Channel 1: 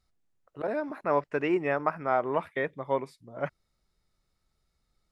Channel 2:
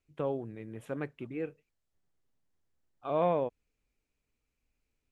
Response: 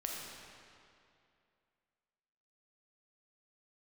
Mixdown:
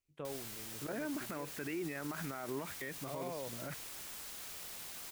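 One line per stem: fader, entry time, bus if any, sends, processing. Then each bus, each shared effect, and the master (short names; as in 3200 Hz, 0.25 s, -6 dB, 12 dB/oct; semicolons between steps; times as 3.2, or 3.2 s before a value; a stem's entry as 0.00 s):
+1.0 dB, 0.25 s, no send, band shelf 710 Hz -8 dB; limiter -26 dBFS, peak gain reduction 9.5 dB; requantised 8-bit, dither triangular
-10.0 dB, 0.00 s, no send, high shelf 3100 Hz +11 dB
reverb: off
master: limiter -31.5 dBFS, peak gain reduction 10.5 dB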